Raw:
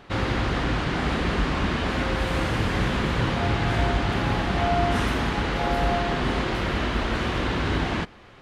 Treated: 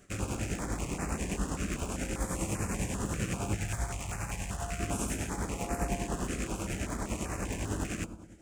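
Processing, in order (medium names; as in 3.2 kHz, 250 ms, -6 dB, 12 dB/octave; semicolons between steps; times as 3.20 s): rattle on loud lows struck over -33 dBFS, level -18 dBFS; 3.55–4.80 s: peaking EQ 300 Hz -13 dB 1.5 oct; reverberation RT60 1.0 s, pre-delay 5 ms, DRR 8 dB; tremolo triangle 10 Hz, depth 65%; resonant high shelf 5.5 kHz +12.5 dB, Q 3; step-sequenced notch 5.1 Hz 910–3300 Hz; trim -7 dB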